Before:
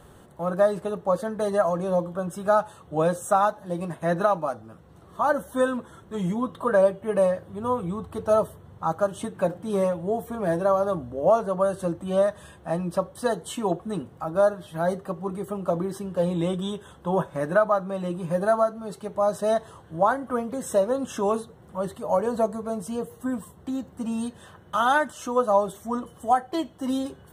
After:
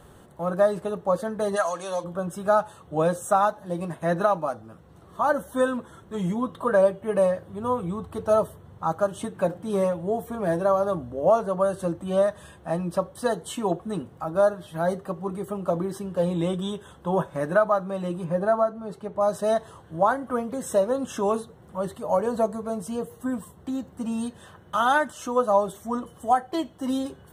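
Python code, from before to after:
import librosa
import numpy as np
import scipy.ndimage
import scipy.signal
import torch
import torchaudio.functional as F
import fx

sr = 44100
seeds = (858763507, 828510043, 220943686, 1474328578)

y = fx.weighting(x, sr, curve='ITU-R 468', at=(1.55, 2.03), fade=0.02)
y = fx.high_shelf(y, sr, hz=3300.0, db=-11.0, at=(18.24, 19.21))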